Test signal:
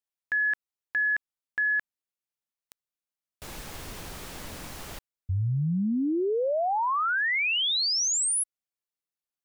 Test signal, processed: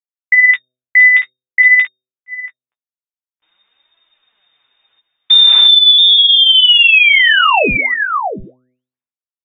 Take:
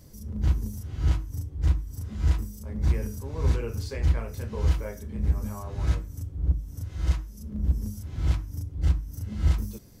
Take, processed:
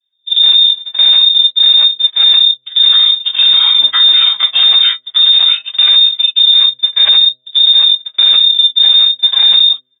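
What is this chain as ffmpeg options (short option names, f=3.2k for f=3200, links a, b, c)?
-filter_complex "[0:a]asplit=2[a][b];[b]aecho=0:1:683:0.335[c];[a][c]amix=inputs=2:normalize=0,agate=range=-48dB:threshold=-32dB:ratio=16:release=212:detection=peak,acrossover=split=1000[d][e];[e]acompressor=threshold=-36dB:ratio=6:attack=5.3:release=720:knee=6:detection=peak[f];[d][f]amix=inputs=2:normalize=0,equalizer=f=340:t=o:w=2.9:g=-11.5,lowpass=f=3.1k:t=q:w=0.5098,lowpass=f=3.1k:t=q:w=0.6013,lowpass=f=3.1k:t=q:w=0.9,lowpass=f=3.1k:t=q:w=2.563,afreqshift=-3700,asplit=2[g][h];[h]adelay=15,volume=-7dB[i];[g][i]amix=inputs=2:normalize=0,bandreject=f=126.6:t=h:w=4,bandreject=f=253.2:t=h:w=4,bandreject=f=379.8:t=h:w=4,bandreject=f=506.4:t=h:w=4,bandreject=f=633:t=h:w=4,adynamicequalizer=threshold=0.00398:dfrequency=1100:dqfactor=1.1:tfrequency=1100:tqfactor=1.1:attack=5:release=100:ratio=0.375:range=3:mode=boostabove:tftype=bell,flanger=delay=3:depth=6:regen=41:speed=0.5:shape=sinusoidal,acrossover=split=480|2600[j][k][l];[k]acompressor=threshold=-47dB:ratio=3:attack=11:release=264:knee=2.83:detection=peak[m];[j][m][l]amix=inputs=3:normalize=0,alimiter=level_in=35dB:limit=-1dB:release=50:level=0:latency=1,volume=-1dB"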